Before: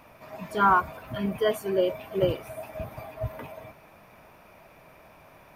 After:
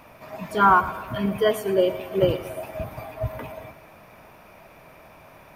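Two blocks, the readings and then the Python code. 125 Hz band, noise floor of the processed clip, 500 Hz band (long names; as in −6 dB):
+4.0 dB, −50 dBFS, +4.0 dB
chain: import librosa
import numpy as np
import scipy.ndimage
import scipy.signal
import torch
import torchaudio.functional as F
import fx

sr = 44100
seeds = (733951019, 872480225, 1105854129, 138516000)

y = fx.echo_feedback(x, sr, ms=115, feedback_pct=57, wet_db=-16.0)
y = F.gain(torch.from_numpy(y), 4.0).numpy()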